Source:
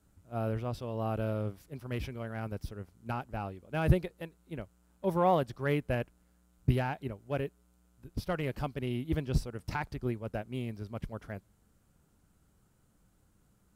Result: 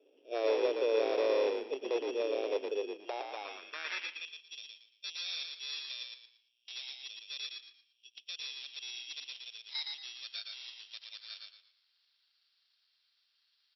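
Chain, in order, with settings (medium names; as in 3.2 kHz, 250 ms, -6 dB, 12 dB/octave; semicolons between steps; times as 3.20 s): knee-point frequency compression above 1.6 kHz 1.5:1; in parallel at +2.5 dB: compression, threshold -38 dBFS, peak gain reduction 18.5 dB; on the sum: low-pass sweep 430 Hz -> 3.2 kHz, 8.89–11.11 s; sample-rate reducer 3 kHz, jitter 0%; hard clipper -26 dBFS, distortion -8 dB; FFT band-pass 260–5700 Hz; frequency-shifting echo 115 ms, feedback 31%, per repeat -48 Hz, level -3.5 dB; high-pass sweep 500 Hz -> 3.8 kHz, 2.91–4.49 s; 7.41–8.39 s: Butterworth band-stop 950 Hz, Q 5.7; speakerphone echo 150 ms, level -17 dB; trim -3 dB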